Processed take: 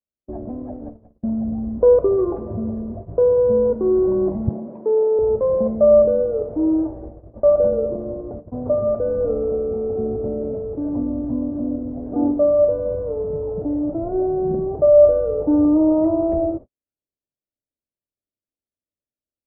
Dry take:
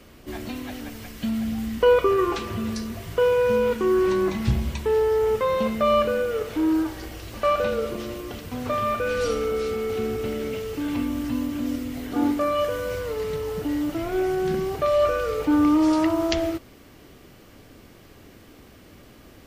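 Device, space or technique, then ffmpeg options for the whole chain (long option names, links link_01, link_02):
under water: -filter_complex "[0:a]agate=range=-55dB:threshold=-35dB:ratio=16:detection=peak,lowpass=frequency=740:width=0.5412,lowpass=frequency=740:width=1.3066,equalizer=frequency=600:width_type=o:width=0.29:gain=8,asettb=1/sr,asplit=3[link_01][link_02][link_03];[link_01]atrim=end=4.494[link_04];[link_02]atrim=start=4.49:end=5.19,asetpts=PTS-STARTPTS,afade=type=in:duration=0.004:curve=qsin,afade=type=out:start_time=0.696:duration=0.004:curve=qsin,highpass=frequency=210:width=0.5412,highpass=frequency=210:width=1.3066[link_05];[link_03]atrim=start=5.186[link_06];[link_04][link_05]acrossfade=duration=0.004:curve1=hsin:curve2=qsin[link_07];[link_07][link_06]acrossfade=duration=0.004:curve1=qsin:curve2=hsin,volume=3dB"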